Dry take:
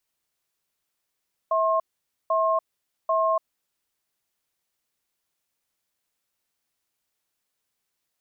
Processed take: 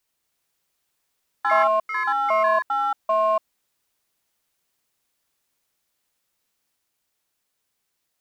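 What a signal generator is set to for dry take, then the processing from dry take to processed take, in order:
cadence 650 Hz, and 1070 Hz, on 0.29 s, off 0.50 s, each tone -22 dBFS 2.21 s
in parallel at -6.5 dB: overloaded stage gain 23 dB; on the sum: echoes that change speed 0.247 s, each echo +4 st, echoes 3

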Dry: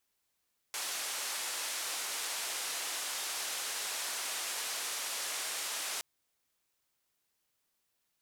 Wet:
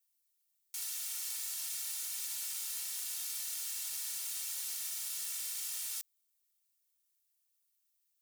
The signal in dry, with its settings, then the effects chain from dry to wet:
noise band 550–10000 Hz, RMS -37.5 dBFS 5.27 s
minimum comb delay 2.2 ms; differentiator

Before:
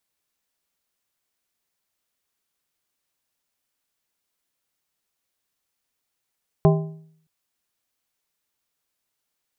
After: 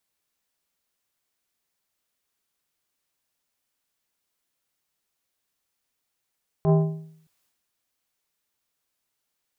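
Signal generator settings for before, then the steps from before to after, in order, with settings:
metal hit plate, length 0.62 s, lowest mode 159 Hz, modes 5, decay 0.65 s, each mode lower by 4 dB, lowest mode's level -11 dB
transient shaper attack -11 dB, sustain +7 dB

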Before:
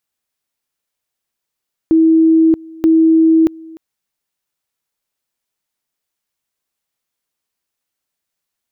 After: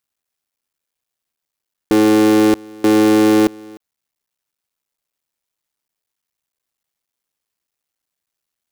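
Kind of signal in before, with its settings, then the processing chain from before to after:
two-level tone 323 Hz -6.5 dBFS, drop 24.5 dB, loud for 0.63 s, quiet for 0.30 s, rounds 2
cycle switcher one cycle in 3, muted

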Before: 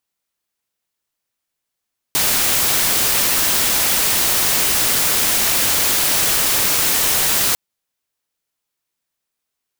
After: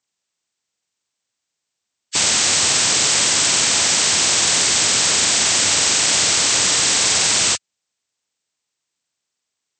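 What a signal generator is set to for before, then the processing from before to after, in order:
noise white, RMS -16.5 dBFS 5.40 s
nonlinear frequency compression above 1200 Hz 1.5:1; HPF 75 Hz 24 dB/oct

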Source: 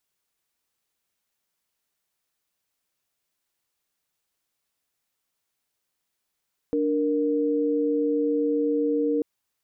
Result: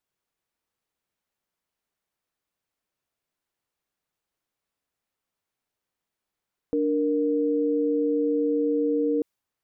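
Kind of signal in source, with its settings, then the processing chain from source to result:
chord D4/A#4 sine, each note -23.5 dBFS 2.49 s
mismatched tape noise reduction decoder only

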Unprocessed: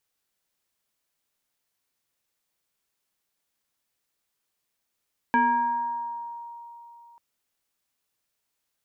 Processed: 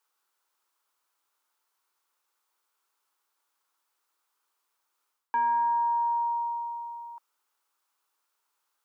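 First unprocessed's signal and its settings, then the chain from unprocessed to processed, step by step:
FM tone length 1.84 s, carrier 940 Hz, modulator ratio 0.74, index 1, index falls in 1.83 s exponential, decay 3.27 s, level -16.5 dB
Chebyshev high-pass 340 Hz, order 3; band shelf 1100 Hz +10.5 dB 1 oct; reverse; compressor 6:1, threshold -25 dBFS; reverse

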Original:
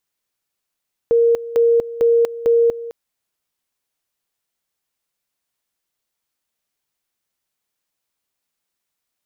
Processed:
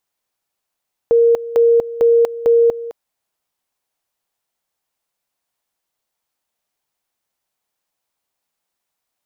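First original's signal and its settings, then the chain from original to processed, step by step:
two-level tone 466 Hz -10.5 dBFS, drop 16 dB, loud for 0.24 s, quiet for 0.21 s, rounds 4
bell 780 Hz +6.5 dB 1.1 oct

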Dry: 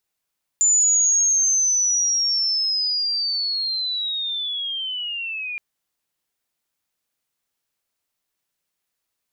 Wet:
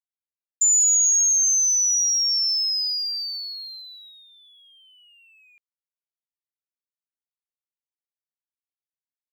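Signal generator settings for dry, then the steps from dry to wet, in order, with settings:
chirp linear 7100 Hz -> 2400 Hz -13.5 dBFS -> -26.5 dBFS 4.97 s
G.711 law mismatch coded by A; gate -24 dBFS, range -25 dB

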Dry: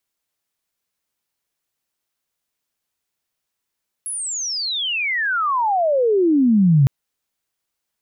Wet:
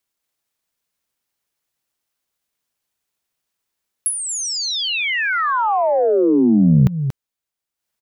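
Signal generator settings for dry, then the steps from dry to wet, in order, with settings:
chirp logarithmic 11000 Hz -> 130 Hz -24 dBFS -> -9.5 dBFS 2.81 s
on a send: echo 0.233 s -6.5 dB; on the sum: transient shaper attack +11 dB, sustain -7 dB

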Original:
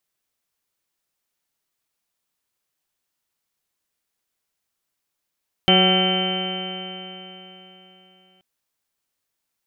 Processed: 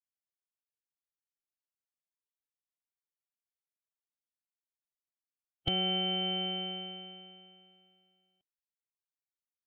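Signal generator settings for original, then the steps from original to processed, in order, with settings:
stretched partials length 2.73 s, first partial 184 Hz, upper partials -2/-5/-2/-20/-18/-11/-15/-17/-14.5/-7.5/-15/-8/4 dB, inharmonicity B 0.0022, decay 3.61 s, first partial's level -18 dB
harmonic-percussive split harmonic -11 dB; compressor 5:1, threshold -34 dBFS; spectral expander 1.5:1

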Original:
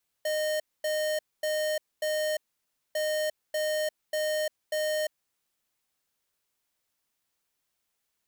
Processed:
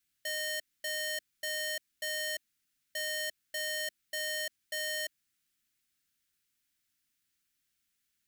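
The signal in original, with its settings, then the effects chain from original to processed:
beep pattern square 615 Hz, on 0.35 s, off 0.24 s, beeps 4, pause 0.58 s, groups 2, -28.5 dBFS
band shelf 680 Hz -14 dB

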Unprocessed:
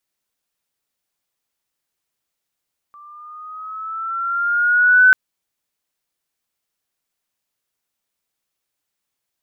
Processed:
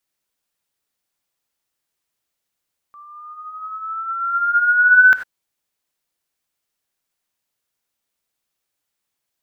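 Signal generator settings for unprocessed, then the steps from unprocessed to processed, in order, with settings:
gliding synth tone sine, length 2.19 s, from 1170 Hz, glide +4.5 st, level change +33.5 dB, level -6 dB
non-linear reverb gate 0.11 s rising, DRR 9.5 dB

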